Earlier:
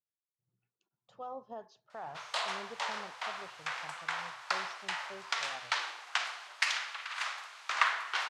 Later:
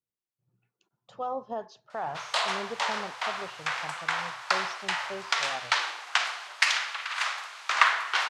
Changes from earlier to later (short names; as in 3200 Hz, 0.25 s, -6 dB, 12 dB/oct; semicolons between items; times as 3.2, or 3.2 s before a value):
speech +10.0 dB; background +7.0 dB